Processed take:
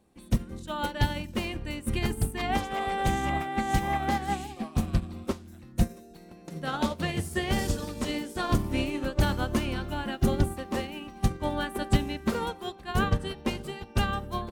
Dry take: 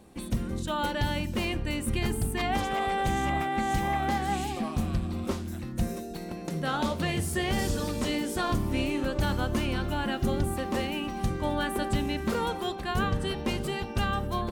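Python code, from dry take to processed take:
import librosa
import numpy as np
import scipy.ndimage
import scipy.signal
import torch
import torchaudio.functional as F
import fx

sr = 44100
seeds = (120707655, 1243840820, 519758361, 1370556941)

y = fx.upward_expand(x, sr, threshold_db=-35.0, expansion=2.5)
y = y * librosa.db_to_amplitude(7.0)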